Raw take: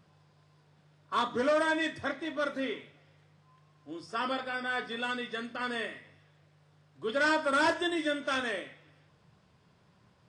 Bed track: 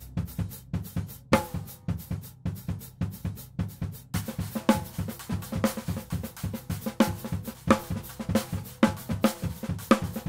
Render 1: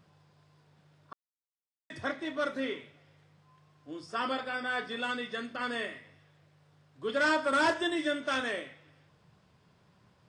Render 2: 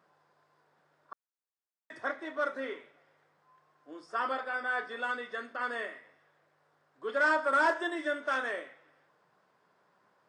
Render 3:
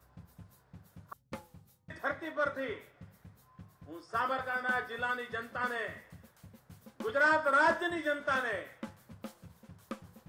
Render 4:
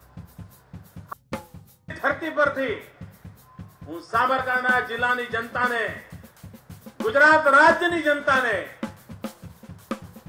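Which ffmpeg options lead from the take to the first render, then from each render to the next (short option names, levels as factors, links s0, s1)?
-filter_complex "[0:a]asplit=3[s0][s1][s2];[s0]atrim=end=1.13,asetpts=PTS-STARTPTS,afade=t=out:st=1.126:d=0.004:c=hsin[s3];[s1]atrim=start=1.13:end=1.9,asetpts=PTS-STARTPTS,volume=0[s4];[s2]atrim=start=1.9,asetpts=PTS-STARTPTS,afade=t=in:d=0.004:c=hsin[s5];[s3][s4][s5]concat=n=3:v=0:a=1"
-af "highpass=410,highshelf=f=2100:t=q:w=1.5:g=-7"
-filter_complex "[1:a]volume=0.0841[s0];[0:a][s0]amix=inputs=2:normalize=0"
-af "volume=3.76"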